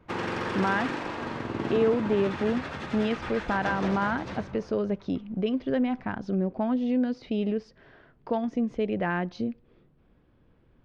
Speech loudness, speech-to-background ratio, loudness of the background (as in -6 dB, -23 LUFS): -29.0 LUFS, 5.0 dB, -34.0 LUFS